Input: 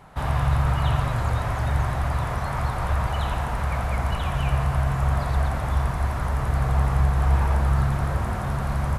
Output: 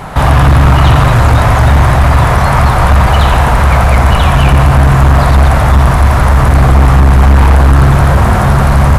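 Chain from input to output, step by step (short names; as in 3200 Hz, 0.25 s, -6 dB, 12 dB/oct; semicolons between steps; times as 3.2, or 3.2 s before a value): overloaded stage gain 21 dB; maximiser +25.5 dB; gain -1 dB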